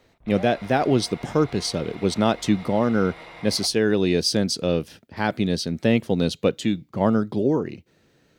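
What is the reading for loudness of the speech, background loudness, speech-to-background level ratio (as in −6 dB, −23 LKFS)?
−23.0 LKFS, −42.0 LKFS, 19.0 dB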